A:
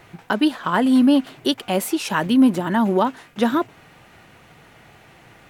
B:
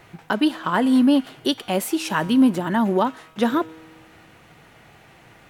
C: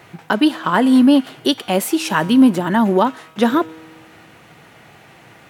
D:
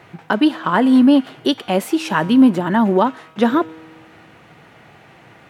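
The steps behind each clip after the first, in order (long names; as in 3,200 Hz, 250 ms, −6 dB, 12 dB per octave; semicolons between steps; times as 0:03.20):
tuned comb filter 160 Hz, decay 1.5 s, mix 50%; level +4.5 dB
high-pass filter 95 Hz; level +5 dB
high-shelf EQ 5,300 Hz −10.5 dB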